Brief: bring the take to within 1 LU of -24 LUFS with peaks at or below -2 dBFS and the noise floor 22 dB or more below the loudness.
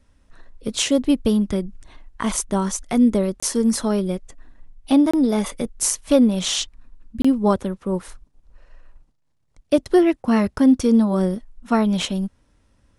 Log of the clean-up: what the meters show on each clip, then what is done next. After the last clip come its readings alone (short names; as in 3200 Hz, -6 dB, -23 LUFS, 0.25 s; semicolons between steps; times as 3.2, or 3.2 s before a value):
dropouts 3; longest dropout 25 ms; loudness -20.0 LUFS; peak -2.5 dBFS; loudness target -24.0 LUFS
-> interpolate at 3.4/5.11/7.22, 25 ms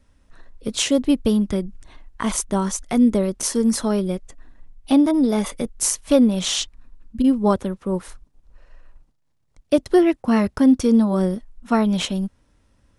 dropouts 0; loudness -20.0 LUFS; peak -2.5 dBFS; loudness target -24.0 LUFS
-> gain -4 dB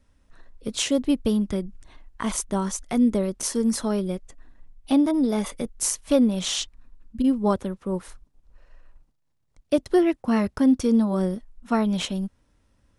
loudness -24.0 LUFS; peak -6.5 dBFS; noise floor -69 dBFS